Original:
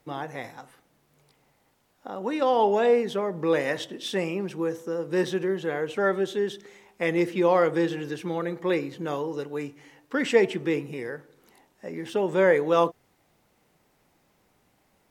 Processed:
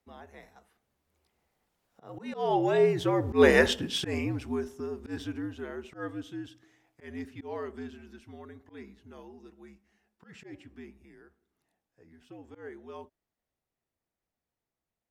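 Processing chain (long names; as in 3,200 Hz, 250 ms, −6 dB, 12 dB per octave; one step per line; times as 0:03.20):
source passing by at 0:03.58, 11 m/s, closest 3.1 metres
frequency shifter −73 Hz
volume swells 118 ms
level +7 dB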